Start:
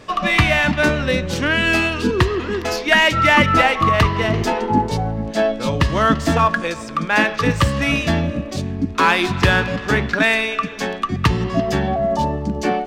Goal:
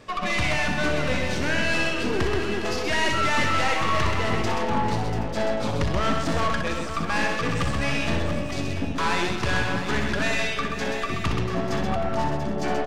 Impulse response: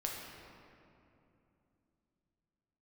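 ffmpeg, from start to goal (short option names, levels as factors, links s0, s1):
-filter_complex "[0:a]aeval=exprs='(tanh(8.91*val(0)+0.6)-tanh(0.6))/8.91':c=same,aecho=1:1:62|129|499|688|773|888:0.447|0.531|0.211|0.335|0.126|0.251,acrossover=split=9900[s0][s1];[s1]acompressor=threshold=0.00178:ratio=4:attack=1:release=60[s2];[s0][s2]amix=inputs=2:normalize=0,volume=0.668"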